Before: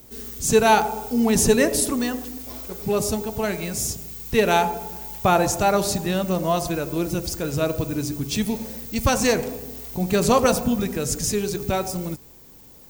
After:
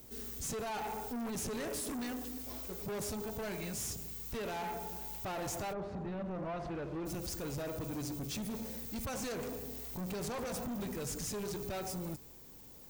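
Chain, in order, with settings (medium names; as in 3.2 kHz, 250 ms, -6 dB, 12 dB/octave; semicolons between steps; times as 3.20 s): peak limiter -15 dBFS, peak gain reduction 11 dB; saturation -30 dBFS, distortion -7 dB; 5.72–7.05 s: low-pass 1.2 kHz -> 2.9 kHz 12 dB/octave; trim -6.5 dB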